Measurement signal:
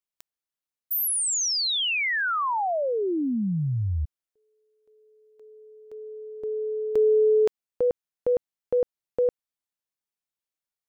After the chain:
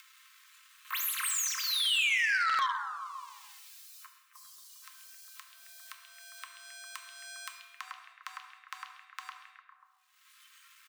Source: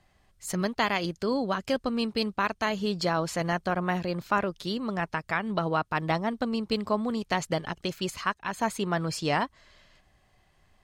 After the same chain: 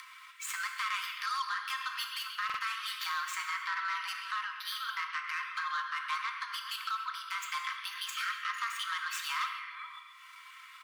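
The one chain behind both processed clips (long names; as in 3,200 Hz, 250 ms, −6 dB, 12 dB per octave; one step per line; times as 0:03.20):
running median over 9 samples
noise reduction from a noise print of the clip's start 19 dB
Butterworth high-pass 790 Hz 72 dB per octave
comb filter 3.8 ms, depth 46%
downward compressor 2 to 1, threshold −35 dBFS
brickwall limiter −30.5 dBFS
upward compression 4 to 1, threshold −44 dBFS
echo through a band-pass that steps 134 ms, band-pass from 3,000 Hz, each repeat −0.7 octaves, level −6 dB
frequency shifter +260 Hz
reverb whose tail is shaped and stops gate 340 ms falling, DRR 4.5 dB
buffer that repeats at 0:02.45, samples 2,048, times 2
saturating transformer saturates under 2,200 Hz
level +5.5 dB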